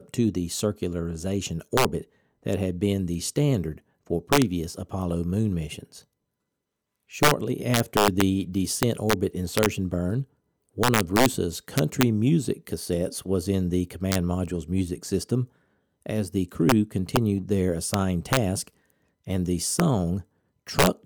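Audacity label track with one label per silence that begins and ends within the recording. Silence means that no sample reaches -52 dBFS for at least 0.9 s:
6.040000	7.090000	silence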